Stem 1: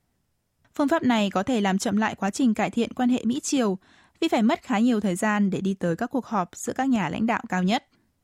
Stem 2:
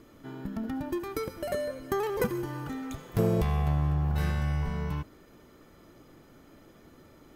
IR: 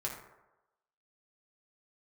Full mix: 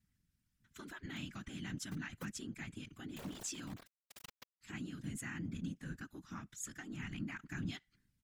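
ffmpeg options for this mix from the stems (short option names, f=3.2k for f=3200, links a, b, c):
-filter_complex "[0:a]acompressor=threshold=-28dB:ratio=6,firequalizer=gain_entry='entry(150,0);entry(430,-30);entry(1500,-3)':delay=0.05:min_phase=1,volume=0dB,asplit=3[a][b][c];[a]atrim=end=3.87,asetpts=PTS-STARTPTS,afade=t=out:st=3.866:d=0.004:c=hsin[d];[b]atrim=start=3.87:end=4.61,asetpts=PTS-STARTPTS,volume=0[e];[c]atrim=start=4.61,asetpts=PTS-STARTPTS,afade=t=in:d=0.004:c=hsin[f];[d][e][f]concat=n=3:v=0:a=1,asplit=2[g][h];[1:a]equalizer=f=190:w=0.32:g=-5.5,acrusher=bits=3:mix=0:aa=0.000001,volume=-6.5dB[i];[h]apad=whole_len=324551[j];[i][j]sidechaincompress=threshold=-46dB:ratio=10:attack=7.7:release=524[k];[g][k]amix=inputs=2:normalize=0,afftfilt=real='hypot(re,im)*cos(2*PI*random(0))':imag='hypot(re,im)*sin(2*PI*random(1))':win_size=512:overlap=0.75"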